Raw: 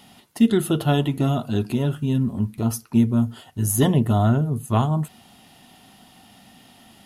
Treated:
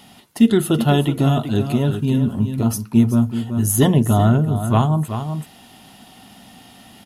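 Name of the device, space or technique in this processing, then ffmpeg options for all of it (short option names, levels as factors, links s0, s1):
ducked delay: -filter_complex "[0:a]asplit=3[s0][s1][s2];[s1]adelay=378,volume=0.708[s3];[s2]apad=whole_len=327779[s4];[s3][s4]sidechaincompress=threshold=0.0794:ratio=8:attack=8.8:release=1040[s5];[s0][s5]amix=inputs=2:normalize=0,volume=1.5"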